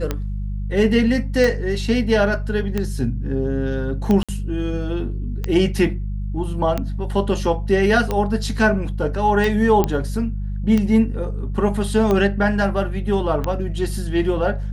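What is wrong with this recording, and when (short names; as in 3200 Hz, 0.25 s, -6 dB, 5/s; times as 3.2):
hum 50 Hz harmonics 4 -25 dBFS
tick 45 rpm -9 dBFS
4.23–4.29 gap 56 ms
9.84 pop -6 dBFS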